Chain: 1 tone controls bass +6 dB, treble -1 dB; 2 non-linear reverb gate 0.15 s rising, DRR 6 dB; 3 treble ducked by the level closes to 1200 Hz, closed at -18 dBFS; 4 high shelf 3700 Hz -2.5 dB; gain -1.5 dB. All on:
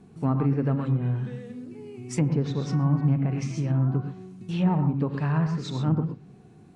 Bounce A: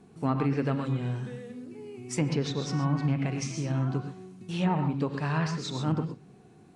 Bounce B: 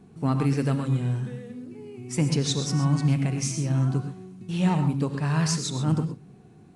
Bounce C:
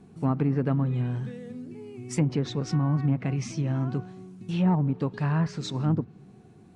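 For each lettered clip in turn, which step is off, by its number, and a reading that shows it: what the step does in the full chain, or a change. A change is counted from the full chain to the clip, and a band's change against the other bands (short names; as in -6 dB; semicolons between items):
1, 125 Hz band -7.5 dB; 3, 8 kHz band +13.0 dB; 2, 4 kHz band +2.5 dB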